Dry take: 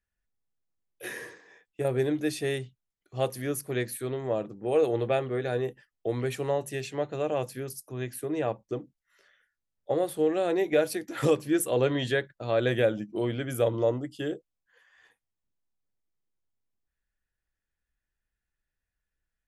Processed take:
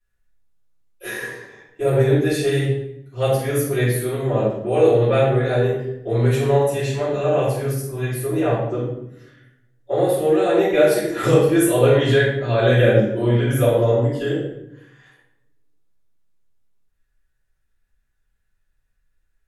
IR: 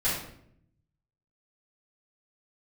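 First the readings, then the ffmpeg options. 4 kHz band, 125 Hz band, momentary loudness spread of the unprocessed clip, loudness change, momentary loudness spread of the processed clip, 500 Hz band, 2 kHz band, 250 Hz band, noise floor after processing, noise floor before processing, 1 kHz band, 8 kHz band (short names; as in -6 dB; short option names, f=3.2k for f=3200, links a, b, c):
+8.5 dB, +15.5 dB, 12 LU, +10.5 dB, 11 LU, +10.0 dB, +10.0 dB, +9.5 dB, -69 dBFS, under -85 dBFS, +9.5 dB, +7.5 dB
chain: -filter_complex "[1:a]atrim=start_sample=2205,asetrate=35280,aresample=44100[a];[0:a][a]afir=irnorm=-1:irlink=0,volume=-2.5dB"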